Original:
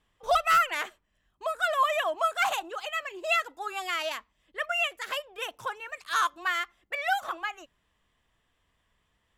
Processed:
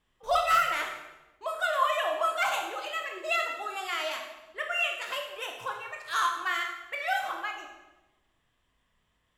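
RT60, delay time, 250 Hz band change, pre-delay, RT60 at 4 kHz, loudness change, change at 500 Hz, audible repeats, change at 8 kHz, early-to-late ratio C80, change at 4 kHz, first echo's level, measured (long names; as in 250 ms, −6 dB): 1.1 s, no echo audible, −0.5 dB, 16 ms, 0.80 s, −1.0 dB, −0.5 dB, no echo audible, −1.0 dB, 7.5 dB, −0.5 dB, no echo audible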